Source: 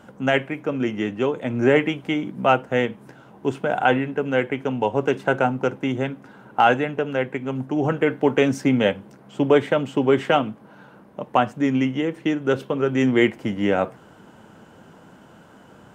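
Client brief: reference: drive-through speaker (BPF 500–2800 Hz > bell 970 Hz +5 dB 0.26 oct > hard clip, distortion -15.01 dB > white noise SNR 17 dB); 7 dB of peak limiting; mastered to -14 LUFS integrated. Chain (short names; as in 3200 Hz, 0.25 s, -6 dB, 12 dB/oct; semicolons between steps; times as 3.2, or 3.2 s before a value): limiter -12 dBFS; BPF 500–2800 Hz; bell 970 Hz +5 dB 0.26 oct; hard clip -19.5 dBFS; white noise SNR 17 dB; gain +15.5 dB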